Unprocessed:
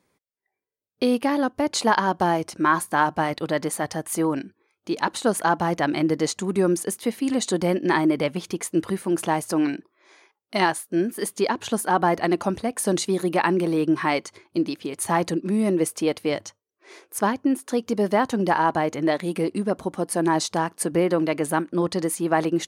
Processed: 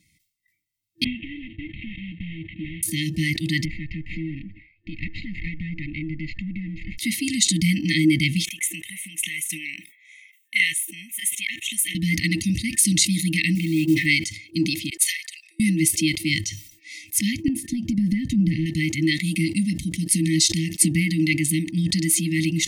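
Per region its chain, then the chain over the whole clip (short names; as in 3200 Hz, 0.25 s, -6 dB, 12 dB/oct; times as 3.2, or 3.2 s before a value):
1.04–2.83 CVSD 16 kbps + compressor 4:1, threshold -33 dBFS
3.65–6.98 minimum comb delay 0.44 ms + inverse Chebyshev low-pass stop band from 12000 Hz, stop band 80 dB + compressor 3:1, threshold -34 dBFS
8.45–11.95 HPF 570 Hz + fixed phaser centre 1300 Hz, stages 6
13.55–14.06 tone controls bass -3 dB, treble -12 dB + de-hum 71.43 Hz, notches 4 + short-mantissa float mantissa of 4-bit
14.9–15.6 steep high-pass 1700 Hz 72 dB/oct + upward expander 2.5:1, over -46 dBFS
17.48–18.66 tilt shelf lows +10 dB, about 1100 Hz + compressor 10:1, threshold -18 dBFS
whole clip: FFT band-reject 330–1800 Hz; comb 1.9 ms, depth 74%; sustainer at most 100 dB/s; gain +8 dB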